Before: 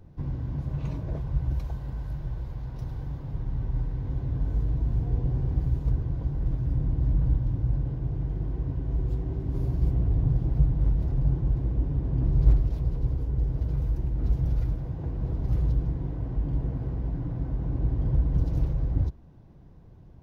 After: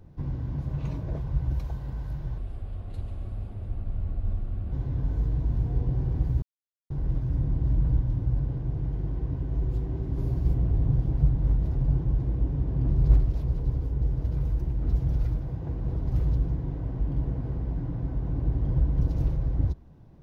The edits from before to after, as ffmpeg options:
ffmpeg -i in.wav -filter_complex "[0:a]asplit=5[link_01][link_02][link_03][link_04][link_05];[link_01]atrim=end=2.384[link_06];[link_02]atrim=start=2.38:end=4.09,asetpts=PTS-STARTPTS,asetrate=32193,aresample=44100[link_07];[link_03]atrim=start=4.086:end=5.79,asetpts=PTS-STARTPTS,afade=type=out:start_time=1.7:duration=0.004:curve=hsin[link_08];[link_04]atrim=start=5.79:end=6.27,asetpts=PTS-STARTPTS,volume=0[link_09];[link_05]atrim=start=6.27,asetpts=PTS-STARTPTS,afade=type=in:duration=0.004:curve=hsin[link_10];[link_06][link_07]acrossfade=duration=0.004:curve1=hsin:curve2=hsin[link_11];[link_08][link_09][link_10]concat=n=3:v=0:a=1[link_12];[link_11][link_12]acrossfade=duration=0.004:curve1=hsin:curve2=hsin" out.wav

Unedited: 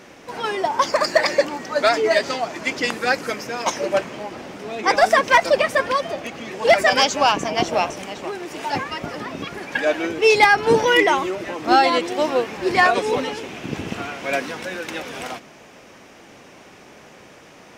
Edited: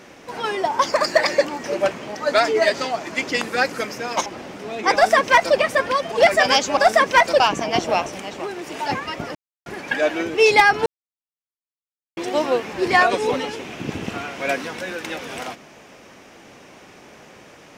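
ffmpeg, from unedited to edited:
ffmpeg -i in.wav -filter_complex "[0:a]asplit=11[link_01][link_02][link_03][link_04][link_05][link_06][link_07][link_08][link_09][link_10][link_11];[link_01]atrim=end=1.642[link_12];[link_02]atrim=start=3.748:end=4.262[link_13];[link_03]atrim=start=1.638:end=3.752[link_14];[link_04]atrim=start=4.258:end=6.122[link_15];[link_05]atrim=start=6.588:end=7.242[link_16];[link_06]atrim=start=4.938:end=5.572[link_17];[link_07]atrim=start=7.238:end=9.19,asetpts=PTS-STARTPTS,afade=type=out:start_time=1.948:duration=0.004:curve=hsin[link_18];[link_08]atrim=start=9.19:end=9.5,asetpts=PTS-STARTPTS,volume=0[link_19];[link_09]atrim=start=9.5:end=10.7,asetpts=PTS-STARTPTS,afade=type=in:duration=0.004:curve=hsin,afade=type=out:start_time=1.196:duration=0.004:curve=hsin[link_20];[link_10]atrim=start=10.7:end=12.01,asetpts=PTS-STARTPTS,volume=0[link_21];[link_11]atrim=start=12.01,asetpts=PTS-STARTPTS,afade=type=in:duration=0.004:curve=hsin[link_22];[link_12][link_13]acrossfade=duration=0.004:curve1=hsin:curve2=hsin[link_23];[link_23][link_14]acrossfade=duration=0.004:curve1=hsin:curve2=hsin[link_24];[link_24][link_15]acrossfade=duration=0.004:curve1=hsin:curve2=hsin[link_25];[link_25][link_16]acrossfade=duration=0.004:curve1=hsin:curve2=hsin[link_26];[link_26][link_17]acrossfade=duration=0.004:curve1=hsin:curve2=hsin[link_27];[link_18][link_19][link_20][link_21][link_22]concat=n=5:v=0:a=1[link_28];[link_27][link_28]acrossfade=duration=0.004:curve1=hsin:curve2=hsin" out.wav

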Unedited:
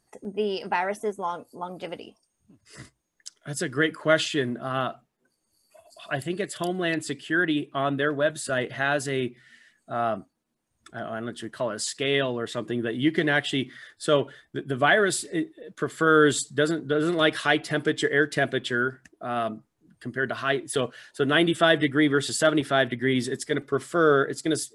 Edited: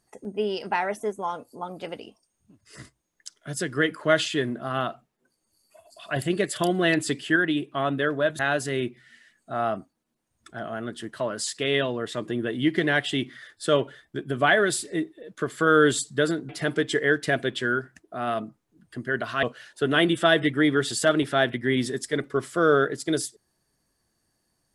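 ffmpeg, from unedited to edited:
ffmpeg -i in.wav -filter_complex "[0:a]asplit=6[link_01][link_02][link_03][link_04][link_05][link_06];[link_01]atrim=end=6.162[link_07];[link_02]atrim=start=6.158:end=7.362,asetpts=PTS-STARTPTS,volume=4.5dB[link_08];[link_03]atrim=start=7.358:end=8.392[link_09];[link_04]atrim=start=8.788:end=16.892[link_10];[link_05]atrim=start=17.578:end=20.522[link_11];[link_06]atrim=start=20.808[link_12];[link_07][link_08]acrossfade=duration=0.004:curve1=hsin:curve2=hsin[link_13];[link_13][link_09]acrossfade=duration=0.004:curve1=hsin:curve2=hsin[link_14];[link_14][link_10]acrossfade=duration=0.004:curve1=hsin:curve2=hsin[link_15];[link_15][link_11]acrossfade=duration=0.004:curve1=hsin:curve2=hsin[link_16];[link_16][link_12]acrossfade=duration=0.004:curve1=hsin:curve2=hsin" out.wav

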